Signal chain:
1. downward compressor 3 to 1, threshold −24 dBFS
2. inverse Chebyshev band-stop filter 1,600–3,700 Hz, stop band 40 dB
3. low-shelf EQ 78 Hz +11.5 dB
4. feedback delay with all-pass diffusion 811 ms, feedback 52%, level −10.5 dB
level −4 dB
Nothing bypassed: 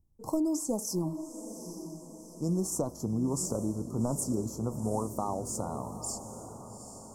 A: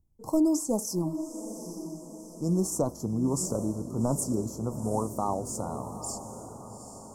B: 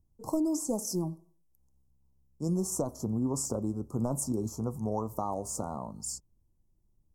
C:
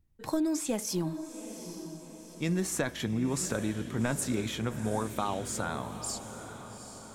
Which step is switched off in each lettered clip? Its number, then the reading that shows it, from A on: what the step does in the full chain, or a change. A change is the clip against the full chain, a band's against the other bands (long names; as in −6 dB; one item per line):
1, average gain reduction 2.0 dB
4, echo-to-direct ratio −9.0 dB to none audible
2, 4 kHz band +8.0 dB